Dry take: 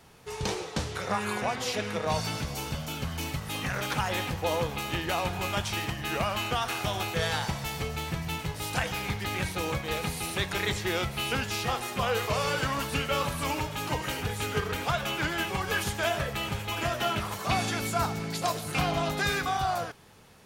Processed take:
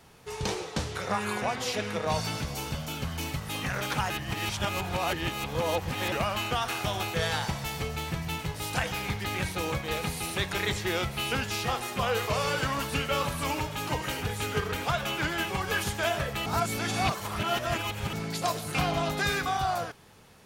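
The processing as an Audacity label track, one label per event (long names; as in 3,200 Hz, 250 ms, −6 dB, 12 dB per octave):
4.100000	6.120000	reverse
16.460000	18.130000	reverse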